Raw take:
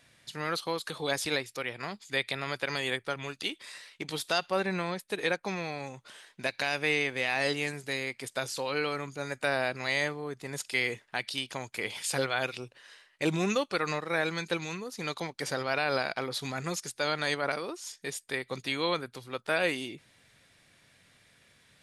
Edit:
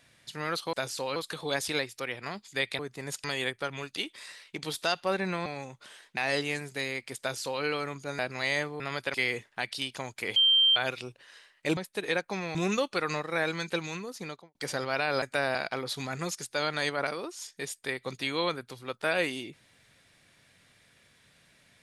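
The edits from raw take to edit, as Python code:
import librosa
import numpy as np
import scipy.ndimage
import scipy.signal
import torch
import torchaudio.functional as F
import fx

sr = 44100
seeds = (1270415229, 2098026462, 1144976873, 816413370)

y = fx.studio_fade_out(x, sr, start_s=14.9, length_s=0.43)
y = fx.edit(y, sr, fx.swap(start_s=2.36, length_s=0.34, other_s=10.25, other_length_s=0.45),
    fx.move(start_s=4.92, length_s=0.78, to_s=13.33),
    fx.cut(start_s=6.41, length_s=0.88),
    fx.duplicate(start_s=8.32, length_s=0.43, to_s=0.73),
    fx.move(start_s=9.31, length_s=0.33, to_s=16.0),
    fx.bleep(start_s=11.92, length_s=0.4, hz=3150.0, db=-18.5), tone=tone)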